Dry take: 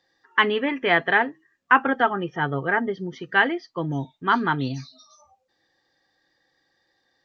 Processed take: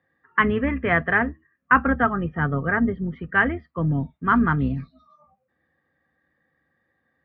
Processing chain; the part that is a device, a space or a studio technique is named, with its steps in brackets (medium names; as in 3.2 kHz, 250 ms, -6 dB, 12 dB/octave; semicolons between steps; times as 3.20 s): sub-octave bass pedal (octave divider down 2 oct, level -5 dB; cabinet simulation 60–2200 Hz, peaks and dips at 70 Hz +6 dB, 160 Hz +8 dB, 230 Hz +8 dB, 360 Hz -5 dB, 860 Hz -8 dB, 1.2 kHz +4 dB)